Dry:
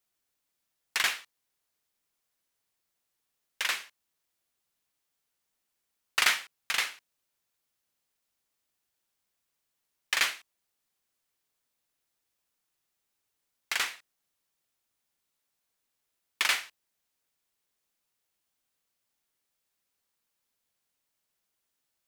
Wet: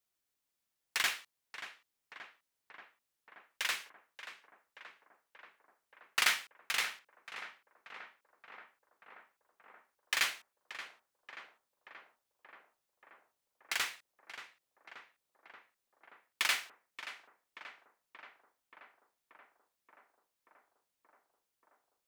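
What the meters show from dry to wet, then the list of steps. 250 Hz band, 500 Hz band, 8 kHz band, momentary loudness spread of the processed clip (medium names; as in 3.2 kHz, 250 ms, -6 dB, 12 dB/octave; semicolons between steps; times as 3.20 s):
-3.5 dB, -3.5 dB, -4.5 dB, 23 LU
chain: short-mantissa float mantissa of 2-bit; tape echo 580 ms, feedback 88%, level -9.5 dB, low-pass 1.9 kHz; trim -4.5 dB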